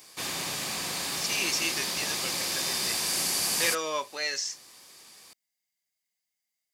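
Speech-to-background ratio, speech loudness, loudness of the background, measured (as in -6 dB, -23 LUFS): -3.5 dB, -31.5 LUFS, -28.0 LUFS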